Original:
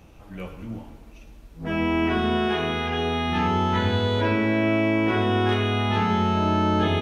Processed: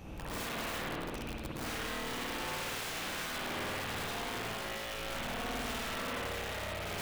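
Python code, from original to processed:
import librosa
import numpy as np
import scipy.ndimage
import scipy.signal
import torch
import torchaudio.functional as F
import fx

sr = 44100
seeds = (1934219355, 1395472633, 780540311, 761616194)

y = fx.rattle_buzz(x, sr, strikes_db=-36.0, level_db=-24.0)
y = fx.over_compress(y, sr, threshold_db=-32.0, ratio=-1.0)
y = (np.mod(10.0 ** (30.0 / 20.0) * y + 1.0, 2.0) - 1.0) / 10.0 ** (30.0 / 20.0)
y = fx.rev_spring(y, sr, rt60_s=1.3, pass_ms=(53,), chirp_ms=50, drr_db=-4.5)
y = y * 10.0 ** (-7.5 / 20.0)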